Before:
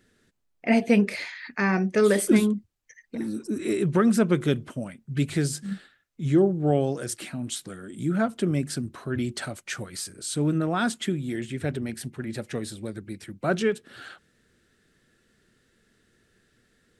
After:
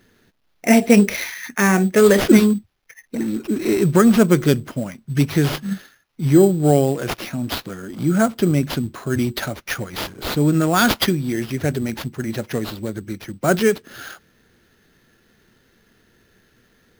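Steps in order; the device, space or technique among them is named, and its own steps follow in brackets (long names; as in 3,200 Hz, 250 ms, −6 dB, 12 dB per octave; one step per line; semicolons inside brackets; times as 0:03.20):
0:10.54–0:11.11: high-shelf EQ 2,000 Hz +9 dB
early companding sampler (sample-rate reduction 8,100 Hz, jitter 0%; log-companded quantiser 8 bits)
level +7.5 dB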